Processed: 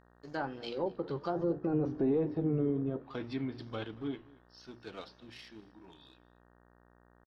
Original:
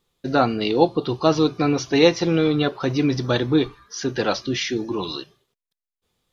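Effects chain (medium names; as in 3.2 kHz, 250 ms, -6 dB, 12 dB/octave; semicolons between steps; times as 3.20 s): Doppler pass-by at 1.68 s, 34 m/s, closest 6.7 m; hum notches 60/120/180/240/300/360 Hz; waveshaping leveller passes 1; treble shelf 2 kHz +3 dB; peak limiter -16 dBFS, peak gain reduction 10.5 dB; low-pass that closes with the level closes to 560 Hz, closed at -23.5 dBFS; tempo 0.87×; flange 1.3 Hz, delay 6 ms, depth 8.1 ms, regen -82%; mains buzz 60 Hz, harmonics 31, -64 dBFS -3 dB/octave; delay 230 ms -23 dB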